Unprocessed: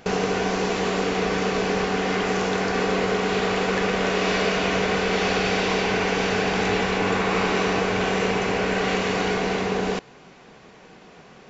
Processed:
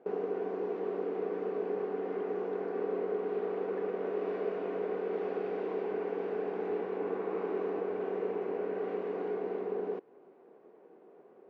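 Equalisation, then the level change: dynamic EQ 580 Hz, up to -4 dB, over -36 dBFS, Q 0.77; ladder band-pass 440 Hz, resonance 50%; +1.5 dB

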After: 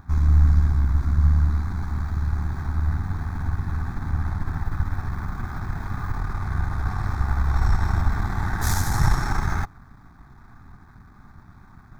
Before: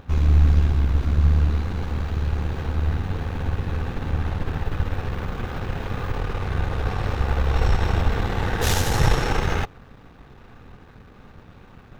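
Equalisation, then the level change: fixed phaser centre 1200 Hz, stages 4; 0.0 dB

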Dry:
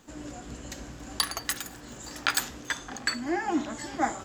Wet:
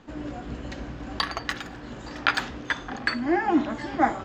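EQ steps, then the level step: air absorption 230 m; +6.5 dB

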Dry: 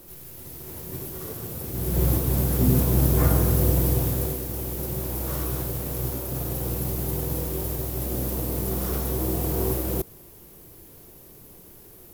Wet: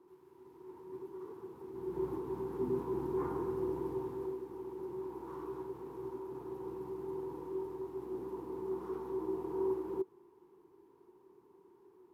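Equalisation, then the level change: double band-pass 600 Hz, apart 1.3 oct; -2.0 dB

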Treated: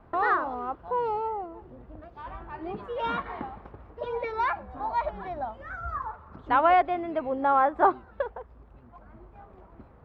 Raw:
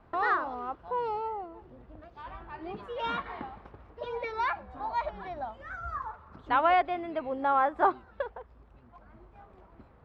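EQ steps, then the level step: high shelf 2400 Hz -9 dB; +4.5 dB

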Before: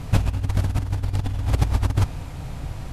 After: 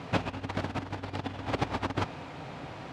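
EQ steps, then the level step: BPF 260–3600 Hz; +1.0 dB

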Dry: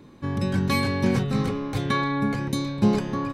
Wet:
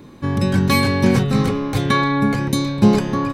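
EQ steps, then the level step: high shelf 10000 Hz +5.5 dB; +7.0 dB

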